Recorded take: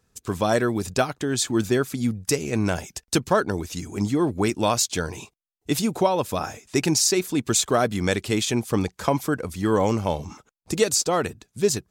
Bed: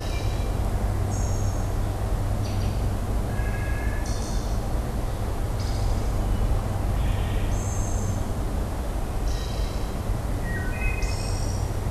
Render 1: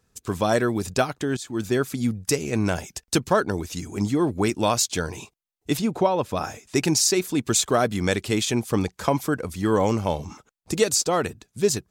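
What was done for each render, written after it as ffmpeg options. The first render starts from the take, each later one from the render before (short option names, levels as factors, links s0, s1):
-filter_complex "[0:a]asettb=1/sr,asplit=3[s0][s1][s2];[s0]atrim=end=5.774[s3];[s1]atrim=start=5.77:end=6.37,asetpts=PTS-STARTPTS,afade=t=in:d=0.004:c=qsin,afade=t=out:st=0.596:d=0.004:c=qsin,lowpass=f=2900:p=1[s4];[s2]atrim=start=6.366[s5];[s3][s4]acrossfade=d=0.004:c1=hsin:c2=qsin[s6];[s6][s5]acrossfade=d=0.004:c1=qsin:c2=hsin,asplit=2[s7][s8];[s7]atrim=end=1.37,asetpts=PTS-STARTPTS,afade=t=out:st=1.366:d=0.004:c=hsin:silence=0.158489[s9];[s8]atrim=start=1.37,asetpts=PTS-STARTPTS,afade=t=in:d=0.45:silence=0.158489[s10];[s9][s10]concat=n=2:v=0:a=1"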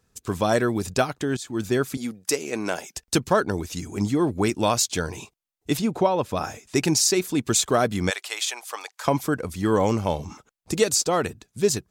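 -filter_complex "[0:a]asettb=1/sr,asplit=3[s0][s1][s2];[s0]atrim=end=1.974[s3];[s1]atrim=start=1.97:end=2.97,asetpts=PTS-STARTPTS,afade=t=in:d=0.004:c=qsin,afade=t=out:st=0.996:d=0.004:c=qsin,highpass=320[s4];[s2]atrim=start=2.966[s5];[s3][s4]acrossfade=d=0.004:c1=hsin:c2=qsin[s6];[s6][s5]acrossfade=d=0.004:c1=qsin:c2=hsin,asplit=3[s7][s8][s9];[s7]afade=t=out:st=8.09:d=0.02[s10];[s8]highpass=f=710:w=0.5412,highpass=f=710:w=1.3066,afade=t=in:st=8.09:d=0.02,afade=t=out:st=9.05:d=0.02[s11];[s9]afade=t=in:st=9.05:d=0.02[s12];[s10][s11][s12]amix=inputs=3:normalize=0"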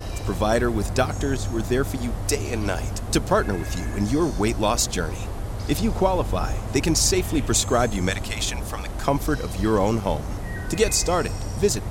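-filter_complex "[1:a]volume=0.708[s0];[0:a][s0]amix=inputs=2:normalize=0"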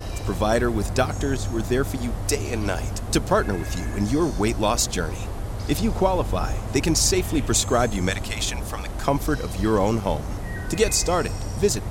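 -af anull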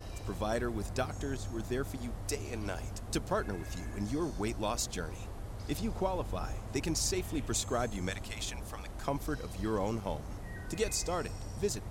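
-af "volume=0.237"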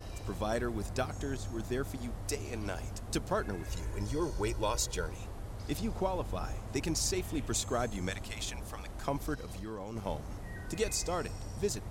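-filter_complex "[0:a]asettb=1/sr,asplit=3[s0][s1][s2];[s0]atrim=end=3.684[s3];[s1]atrim=start=3.68:end=5.07,asetpts=PTS-STARTPTS,afade=t=in:d=0.004:c=qsin,afade=t=out:st=1.386:d=0.004:c=qsin,aecho=1:1:2.1:0.65,atrim=end_sample=61299[s4];[s2]atrim=start=5.066[s5];[s3][s4]acrossfade=d=0.004:c1=hsin:c2=qsin[s6];[s6][s5]acrossfade=d=0.004:c1=qsin:c2=hsin,asplit=3[s7][s8][s9];[s7]afade=t=out:st=9.34:d=0.02[s10];[s8]acompressor=threshold=0.0141:ratio=6:attack=3.2:release=140:knee=1:detection=peak,afade=t=in:st=9.34:d=0.02,afade=t=out:st=9.95:d=0.02[s11];[s9]afade=t=in:st=9.95:d=0.02[s12];[s10][s11][s12]amix=inputs=3:normalize=0"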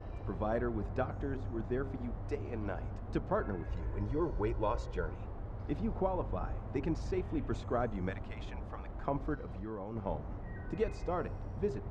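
-af "lowpass=1500,bandreject=f=134.2:t=h:w=4,bandreject=f=268.4:t=h:w=4,bandreject=f=402.6:t=h:w=4,bandreject=f=536.8:t=h:w=4,bandreject=f=671:t=h:w=4,bandreject=f=805.2:t=h:w=4,bandreject=f=939.4:t=h:w=4,bandreject=f=1073.6:t=h:w=4,bandreject=f=1207.8:t=h:w=4,bandreject=f=1342:t=h:w=4,bandreject=f=1476.2:t=h:w=4"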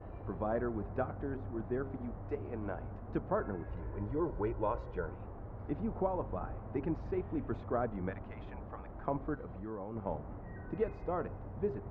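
-af "lowpass=1800,lowshelf=f=74:g=-7.5"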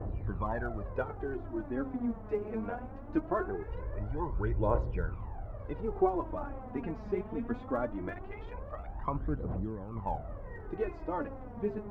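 -af "aphaser=in_gain=1:out_gain=1:delay=4.9:decay=0.74:speed=0.21:type=triangular"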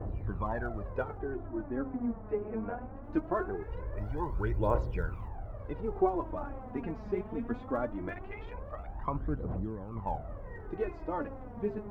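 -filter_complex "[0:a]asettb=1/sr,asplit=3[s0][s1][s2];[s0]atrim=end=1.184[s3];[s1]atrim=start=1.18:end=3.04,asetpts=PTS-STARTPTS,afade=t=in:d=0.004:c=qsin,afade=t=out:st=1.856:d=0.004:c=qsin,lowpass=2000[s4];[s2]atrim=start=3.036[s5];[s3][s4]acrossfade=d=0.004:c1=hsin:c2=qsin[s6];[s6][s5]acrossfade=d=0.004:c1=qsin:c2=hsin,asettb=1/sr,asplit=3[s7][s8][s9];[s7]atrim=end=3.974[s10];[s8]atrim=start=3.97:end=5.28,asetpts=PTS-STARTPTS,afade=t=in:d=0.004:c=qsin,afade=t=out:st=1.306:d=0.004:c=qsin,highshelf=f=3000:g=10.5[s11];[s9]atrim=start=5.276[s12];[s10][s11]acrossfade=d=0.004:c1=hsin:c2=qsin[s13];[s13][s12]acrossfade=d=0.004:c1=qsin:c2=hsin,asettb=1/sr,asplit=3[s14][s15][s16];[s14]atrim=end=8.104[s17];[s15]atrim=start=8.1:end=8.52,asetpts=PTS-STARTPTS,afade=t=in:d=0.004:c=qsin,afade=t=out:st=0.416:d=0.004:c=qsin,equalizer=f=2400:t=o:w=0.77:g=5[s18];[s16]atrim=start=8.516[s19];[s17][s18]acrossfade=d=0.004:c1=hsin:c2=qsin[s20];[s20][s19]acrossfade=d=0.004:c1=qsin:c2=hsin"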